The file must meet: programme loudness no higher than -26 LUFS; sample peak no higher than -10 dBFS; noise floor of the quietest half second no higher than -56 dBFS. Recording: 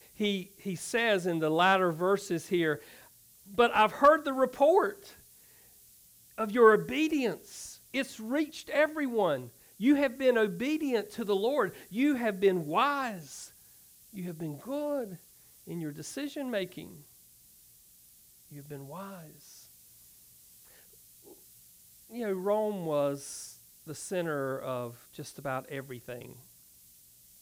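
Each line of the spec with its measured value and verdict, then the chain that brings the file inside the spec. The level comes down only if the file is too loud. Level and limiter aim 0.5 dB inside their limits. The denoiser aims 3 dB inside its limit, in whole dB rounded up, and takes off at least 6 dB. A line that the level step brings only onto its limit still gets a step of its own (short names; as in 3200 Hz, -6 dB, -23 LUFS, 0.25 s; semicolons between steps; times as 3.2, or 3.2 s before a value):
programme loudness -29.5 LUFS: OK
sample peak -9.0 dBFS: fail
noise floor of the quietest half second -59 dBFS: OK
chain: limiter -10.5 dBFS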